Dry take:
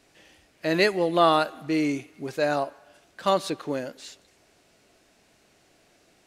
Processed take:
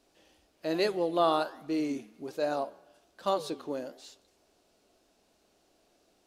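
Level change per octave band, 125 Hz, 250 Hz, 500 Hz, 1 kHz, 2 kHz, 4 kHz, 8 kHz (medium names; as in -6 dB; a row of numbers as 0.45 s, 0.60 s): -11.0 dB, -6.0 dB, -5.5 dB, -6.5 dB, -12.0 dB, -8.0 dB, -8.0 dB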